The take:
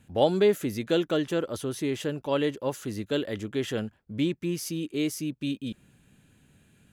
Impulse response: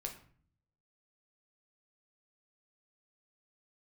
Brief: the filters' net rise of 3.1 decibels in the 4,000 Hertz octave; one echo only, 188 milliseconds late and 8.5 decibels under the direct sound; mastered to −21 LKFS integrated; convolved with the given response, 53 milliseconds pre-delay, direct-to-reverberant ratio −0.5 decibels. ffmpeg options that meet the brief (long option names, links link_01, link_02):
-filter_complex "[0:a]equalizer=frequency=4000:width_type=o:gain=4,aecho=1:1:188:0.376,asplit=2[link_01][link_02];[1:a]atrim=start_sample=2205,adelay=53[link_03];[link_02][link_03]afir=irnorm=-1:irlink=0,volume=2dB[link_04];[link_01][link_04]amix=inputs=2:normalize=0,volume=3.5dB"